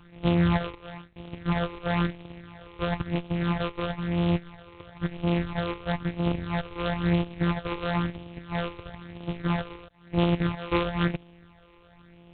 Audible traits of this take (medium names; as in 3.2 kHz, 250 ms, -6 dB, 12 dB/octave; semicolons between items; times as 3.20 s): a buzz of ramps at a fixed pitch in blocks of 256 samples; phasing stages 8, 1 Hz, lowest notch 200–1500 Hz; G.726